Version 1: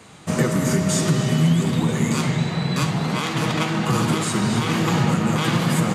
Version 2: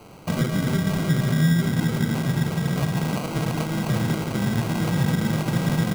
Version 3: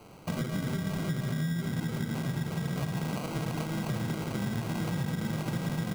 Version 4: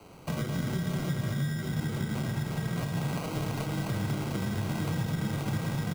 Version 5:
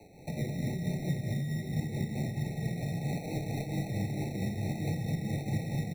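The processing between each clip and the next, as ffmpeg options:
ffmpeg -i in.wav -filter_complex "[0:a]acrossover=split=200[link_01][link_02];[link_02]acompressor=threshold=-28dB:ratio=4[link_03];[link_01][link_03]amix=inputs=2:normalize=0,acrusher=samples=25:mix=1:aa=0.000001" out.wav
ffmpeg -i in.wav -af "acompressor=threshold=-22dB:ratio=6,volume=-6dB" out.wav
ffmpeg -i in.wav -af "afreqshift=-13,aecho=1:1:29.15|209.9:0.355|0.355" out.wav
ffmpeg -i in.wav -af "tremolo=f=4.5:d=0.46,afftfilt=real='re*eq(mod(floor(b*sr/1024/880),2),0)':imag='im*eq(mod(floor(b*sr/1024/880),2),0)':win_size=1024:overlap=0.75" out.wav

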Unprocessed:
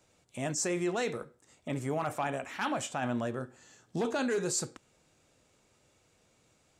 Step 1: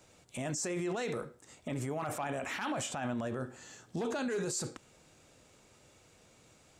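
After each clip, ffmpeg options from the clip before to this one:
ffmpeg -i in.wav -af "alimiter=level_in=10dB:limit=-24dB:level=0:latency=1:release=32,volume=-10dB,volume=6dB" out.wav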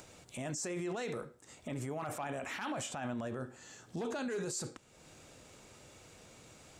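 ffmpeg -i in.wav -af "acompressor=mode=upward:threshold=-44dB:ratio=2.5,volume=-3dB" out.wav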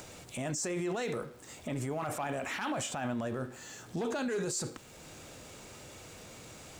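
ffmpeg -i in.wav -af "aeval=exprs='val(0)+0.5*0.00168*sgn(val(0))':channel_layout=same,volume=3.5dB" out.wav

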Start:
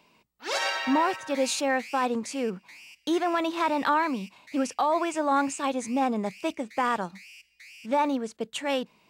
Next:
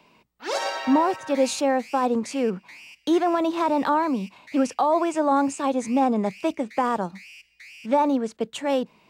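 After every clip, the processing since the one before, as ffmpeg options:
ffmpeg -i in.wav -filter_complex "[0:a]highshelf=frequency=4200:gain=-7,acrossover=split=390|1100|4200[link_01][link_02][link_03][link_04];[link_03]acompressor=threshold=-43dB:ratio=6[link_05];[link_01][link_02][link_05][link_04]amix=inputs=4:normalize=0,volume=5.5dB" out.wav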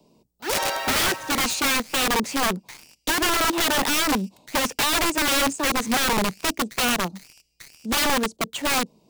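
ffmpeg -i in.wav -filter_complex "[0:a]acrossover=split=360|720|4300[link_01][link_02][link_03][link_04];[link_03]acrusher=bits=6:mix=0:aa=0.000001[link_05];[link_01][link_02][link_05][link_04]amix=inputs=4:normalize=0,aeval=exprs='(mod(9.44*val(0)+1,2)-1)/9.44':channel_layout=same,volume=3dB" out.wav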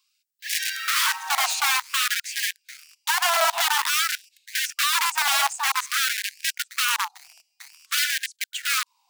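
ffmpeg -i in.wav -af "highpass=frequency=500:width_type=q:width=4.9,afftfilt=real='re*gte(b*sr/1024,640*pow(1600/640,0.5+0.5*sin(2*PI*0.51*pts/sr)))':imag='im*gte(b*sr/1024,640*pow(1600/640,0.5+0.5*sin(2*PI*0.51*pts/sr)))':win_size=1024:overlap=0.75" out.wav

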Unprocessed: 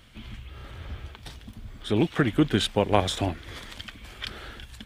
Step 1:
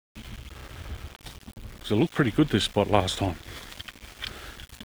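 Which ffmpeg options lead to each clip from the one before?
ffmpeg -i in.wav -af "aeval=exprs='val(0)*gte(abs(val(0)),0.00841)':channel_layout=same" out.wav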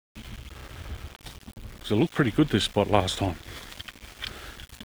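ffmpeg -i in.wav -af anull out.wav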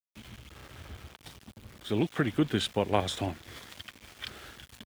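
ffmpeg -i in.wav -af "highpass=74,volume=-5dB" out.wav

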